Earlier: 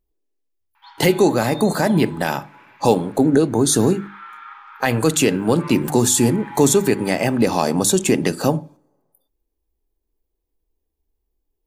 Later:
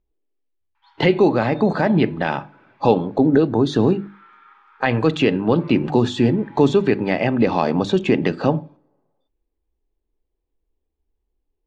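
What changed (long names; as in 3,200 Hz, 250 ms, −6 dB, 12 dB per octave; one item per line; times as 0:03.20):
speech: add low-pass filter 3,600 Hz 24 dB per octave
background −11.0 dB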